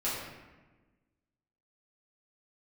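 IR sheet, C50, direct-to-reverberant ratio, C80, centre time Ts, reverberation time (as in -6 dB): 0.5 dB, -10.0 dB, 2.5 dB, 76 ms, 1.2 s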